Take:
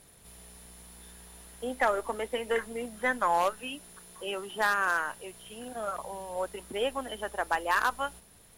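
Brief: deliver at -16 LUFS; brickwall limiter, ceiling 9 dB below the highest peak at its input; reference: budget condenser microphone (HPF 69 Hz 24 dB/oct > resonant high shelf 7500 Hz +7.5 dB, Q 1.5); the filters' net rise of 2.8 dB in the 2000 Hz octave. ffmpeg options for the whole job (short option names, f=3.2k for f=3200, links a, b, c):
-af "equalizer=f=2k:t=o:g=4,alimiter=limit=-21dB:level=0:latency=1,highpass=f=69:w=0.5412,highpass=f=69:w=1.3066,highshelf=f=7.5k:t=q:w=1.5:g=7.5,volume=18dB"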